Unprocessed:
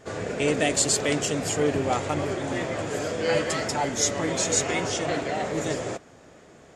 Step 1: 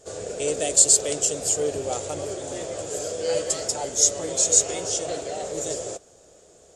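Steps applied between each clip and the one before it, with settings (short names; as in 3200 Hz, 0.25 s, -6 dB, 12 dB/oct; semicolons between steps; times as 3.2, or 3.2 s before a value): graphic EQ 125/250/500/1000/2000/8000 Hz -8/-11/+5/-8/-12/+10 dB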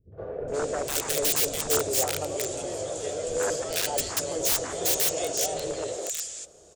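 wrapped overs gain 18 dB; three bands offset in time lows, mids, highs 0.12/0.48 s, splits 220/1700 Hz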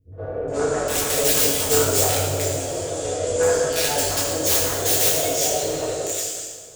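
reverb RT60 1.4 s, pre-delay 5 ms, DRR -5.5 dB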